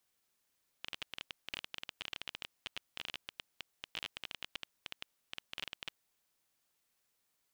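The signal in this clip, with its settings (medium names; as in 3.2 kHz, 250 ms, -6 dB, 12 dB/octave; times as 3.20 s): random clicks 16 per s -23 dBFS 5.28 s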